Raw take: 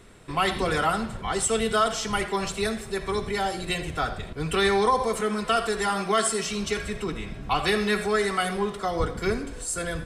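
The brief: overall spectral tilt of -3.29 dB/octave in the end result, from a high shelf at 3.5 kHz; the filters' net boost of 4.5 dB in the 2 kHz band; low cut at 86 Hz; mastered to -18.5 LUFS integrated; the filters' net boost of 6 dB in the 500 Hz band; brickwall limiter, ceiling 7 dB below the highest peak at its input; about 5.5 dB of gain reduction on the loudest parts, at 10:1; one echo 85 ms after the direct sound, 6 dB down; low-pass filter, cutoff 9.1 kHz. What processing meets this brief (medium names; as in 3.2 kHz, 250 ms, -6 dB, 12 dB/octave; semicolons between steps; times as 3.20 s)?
high-pass 86 Hz; low-pass 9.1 kHz; peaking EQ 500 Hz +7.5 dB; peaking EQ 2 kHz +4 dB; treble shelf 3.5 kHz +4.5 dB; compression 10:1, threshold -19 dBFS; peak limiter -16.5 dBFS; delay 85 ms -6 dB; trim +7 dB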